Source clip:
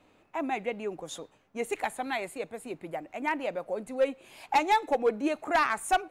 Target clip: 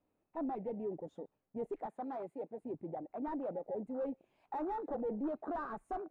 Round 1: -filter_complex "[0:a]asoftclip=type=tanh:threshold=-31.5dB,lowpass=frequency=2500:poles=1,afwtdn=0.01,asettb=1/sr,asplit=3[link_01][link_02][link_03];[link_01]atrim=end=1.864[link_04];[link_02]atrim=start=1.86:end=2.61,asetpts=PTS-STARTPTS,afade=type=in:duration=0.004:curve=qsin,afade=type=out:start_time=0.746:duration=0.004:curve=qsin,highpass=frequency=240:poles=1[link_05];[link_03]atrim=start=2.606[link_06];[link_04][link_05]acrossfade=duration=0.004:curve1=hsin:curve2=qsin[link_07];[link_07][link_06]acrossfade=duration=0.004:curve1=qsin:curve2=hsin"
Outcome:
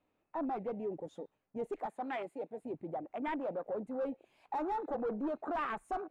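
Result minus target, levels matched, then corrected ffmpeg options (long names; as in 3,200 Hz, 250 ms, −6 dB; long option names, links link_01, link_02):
2,000 Hz band +7.0 dB
-filter_complex "[0:a]asoftclip=type=tanh:threshold=-31.5dB,lowpass=frequency=680:poles=1,afwtdn=0.01,asettb=1/sr,asplit=3[link_01][link_02][link_03];[link_01]atrim=end=1.864[link_04];[link_02]atrim=start=1.86:end=2.61,asetpts=PTS-STARTPTS,afade=type=in:duration=0.004:curve=qsin,afade=type=out:start_time=0.746:duration=0.004:curve=qsin,highpass=frequency=240:poles=1[link_05];[link_03]atrim=start=2.606[link_06];[link_04][link_05]acrossfade=duration=0.004:curve1=hsin:curve2=qsin[link_07];[link_07][link_06]acrossfade=duration=0.004:curve1=qsin:curve2=hsin"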